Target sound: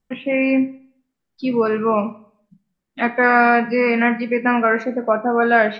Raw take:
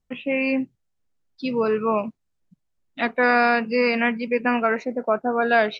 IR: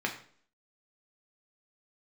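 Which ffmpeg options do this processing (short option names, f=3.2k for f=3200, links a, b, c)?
-filter_complex "[0:a]acrossover=split=2600[a][b];[b]acompressor=threshold=-40dB:ratio=4:attack=1:release=60[c];[a][c]amix=inputs=2:normalize=0,asplit=2[d][e];[1:a]atrim=start_sample=2205,asetrate=41013,aresample=44100[f];[e][f]afir=irnorm=-1:irlink=0,volume=-8.5dB[g];[d][g]amix=inputs=2:normalize=0"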